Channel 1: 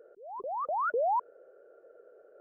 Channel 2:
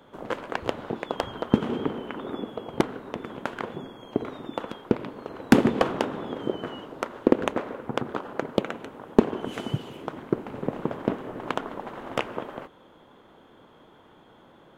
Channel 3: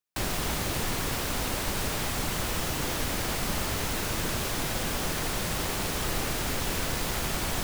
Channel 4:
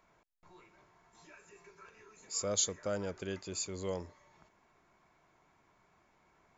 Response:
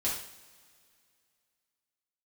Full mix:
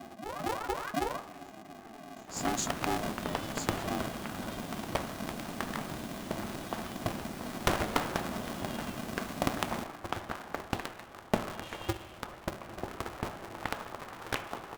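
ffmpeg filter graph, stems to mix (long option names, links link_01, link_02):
-filter_complex "[0:a]alimiter=level_in=7dB:limit=-24dB:level=0:latency=1,volume=-7dB,acompressor=threshold=-37dB:ratio=6,asplit=2[link_01][link_02];[link_02]adelay=7.9,afreqshift=-2.9[link_03];[link_01][link_03]amix=inputs=2:normalize=1,volume=2dB,asplit=2[link_04][link_05];[link_05]volume=-8.5dB[link_06];[1:a]equalizer=frequency=125:width_type=o:width=1:gain=5,equalizer=frequency=250:width_type=o:width=1:gain=-11,equalizer=frequency=500:width_type=o:width=1:gain=-9,equalizer=frequency=1000:width_type=o:width=1:gain=6,adelay=2150,volume=-8dB,asplit=2[link_07][link_08];[link_08]volume=-10.5dB[link_09];[2:a]lowshelf=frequency=380:gain=10.5,adelay=2200,volume=-18dB[link_10];[3:a]asplit=2[link_11][link_12];[link_12]adelay=8.2,afreqshift=0.42[link_13];[link_11][link_13]amix=inputs=2:normalize=1,volume=-1.5dB[link_14];[4:a]atrim=start_sample=2205[link_15];[link_06][link_09]amix=inputs=2:normalize=0[link_16];[link_16][link_15]afir=irnorm=-1:irlink=0[link_17];[link_04][link_07][link_10][link_14][link_17]amix=inputs=5:normalize=0,equalizer=frequency=250:width_type=o:width=1:gain=-5,equalizer=frequency=500:width_type=o:width=1:gain=9,equalizer=frequency=1000:width_type=o:width=1:gain=-4,aeval=exprs='val(0)*sgn(sin(2*PI*220*n/s))':channel_layout=same"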